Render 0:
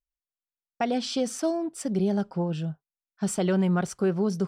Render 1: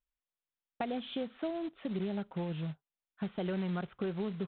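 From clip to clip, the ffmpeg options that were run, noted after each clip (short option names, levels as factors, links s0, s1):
-af "acompressor=threshold=0.0126:ratio=2.5,aresample=8000,acrusher=bits=4:mode=log:mix=0:aa=0.000001,aresample=44100"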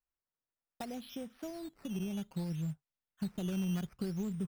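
-af "asubboost=boost=4.5:cutoff=240,acrusher=samples=10:mix=1:aa=0.000001:lfo=1:lforange=10:lforate=0.62,volume=0.473"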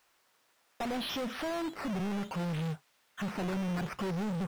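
-filter_complex "[0:a]asplit=2[s0][s1];[s1]highpass=f=720:p=1,volume=79.4,asoftclip=type=tanh:threshold=0.0501[s2];[s0][s2]amix=inputs=2:normalize=0,lowpass=f=3500:p=1,volume=0.501,volume=0.841"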